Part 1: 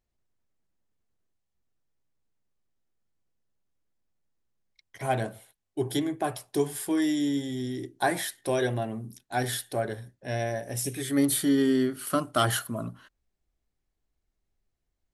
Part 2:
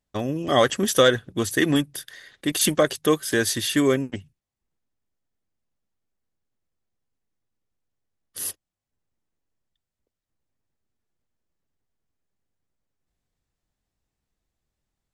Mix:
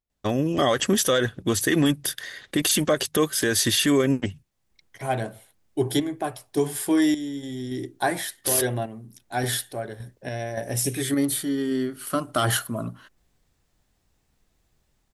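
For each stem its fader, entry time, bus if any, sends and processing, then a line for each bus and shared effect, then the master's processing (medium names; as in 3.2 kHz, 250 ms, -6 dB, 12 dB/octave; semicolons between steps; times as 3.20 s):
-4.0 dB, 0.00 s, no send, random-step tremolo, depth 70%
+2.5 dB, 0.10 s, no send, none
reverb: none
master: level rider gain up to 10 dB; peak limiter -11.5 dBFS, peak gain reduction 10.5 dB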